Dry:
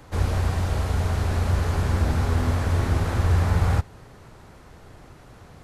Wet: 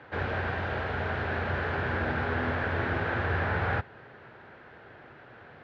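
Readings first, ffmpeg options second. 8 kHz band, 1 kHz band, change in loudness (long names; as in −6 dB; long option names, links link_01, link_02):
below −25 dB, −0.5 dB, −6.5 dB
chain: -af "highpass=170,equalizer=frequency=180:width_type=q:width=4:gain=-8,equalizer=frequency=280:width_type=q:width=4:gain=-5,equalizer=frequency=1100:width_type=q:width=4:gain=-4,equalizer=frequency=1600:width_type=q:width=4:gain=9,lowpass=frequency=3200:width=0.5412,lowpass=frequency=3200:width=1.3066"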